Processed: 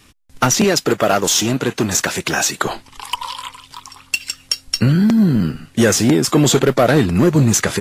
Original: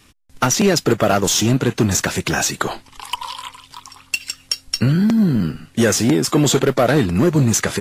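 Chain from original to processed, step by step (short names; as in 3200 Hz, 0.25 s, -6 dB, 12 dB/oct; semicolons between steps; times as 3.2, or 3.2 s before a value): 0.64–2.65 low shelf 180 Hz -11 dB; gain +2 dB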